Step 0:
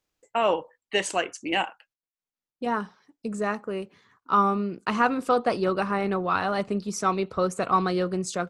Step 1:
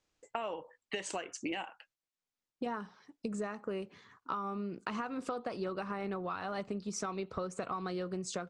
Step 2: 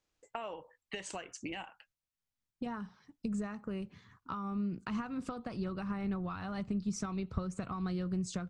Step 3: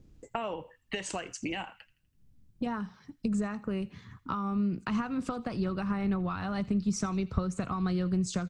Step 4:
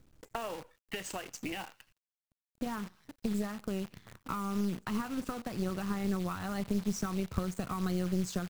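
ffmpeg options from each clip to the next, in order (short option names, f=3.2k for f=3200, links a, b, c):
-af "lowpass=f=8.5k:w=0.5412,lowpass=f=8.5k:w=1.3066,alimiter=limit=-17dB:level=0:latency=1:release=214,acompressor=threshold=-35dB:ratio=12,volume=1dB"
-af "asubboost=boost=8.5:cutoff=160,volume=-3dB"
-filter_complex "[0:a]acrossover=split=290|1900[a][b][c];[a]acompressor=mode=upward:threshold=-42dB:ratio=2.5[d];[c]asplit=2[e][f];[f]adelay=82,lowpass=f=4.4k:p=1,volume=-15dB,asplit=2[g][h];[h]adelay=82,lowpass=f=4.4k:p=1,volume=0.49,asplit=2[i][j];[j]adelay=82,lowpass=f=4.4k:p=1,volume=0.49,asplit=2[k][l];[l]adelay=82,lowpass=f=4.4k:p=1,volume=0.49,asplit=2[m][n];[n]adelay=82,lowpass=f=4.4k:p=1,volume=0.49[o];[e][g][i][k][m][o]amix=inputs=6:normalize=0[p];[d][b][p]amix=inputs=3:normalize=0,volume=6dB"
-af "acrusher=bits=8:dc=4:mix=0:aa=0.000001,aeval=exprs='(tanh(11.2*val(0)+0.7)-tanh(0.7))/11.2':c=same"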